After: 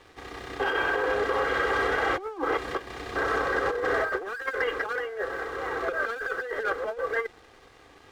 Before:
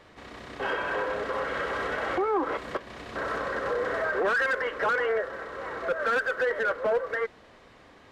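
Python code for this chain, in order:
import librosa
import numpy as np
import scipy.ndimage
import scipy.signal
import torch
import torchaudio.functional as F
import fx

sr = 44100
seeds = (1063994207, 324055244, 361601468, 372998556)

y = x + 0.58 * np.pad(x, (int(2.5 * sr / 1000.0), 0))[:len(x)]
y = fx.over_compress(y, sr, threshold_db=-28.0, ratio=-0.5)
y = np.sign(y) * np.maximum(np.abs(y) - 10.0 ** (-54.0 / 20.0), 0.0)
y = F.gain(torch.from_numpy(y), 1.5).numpy()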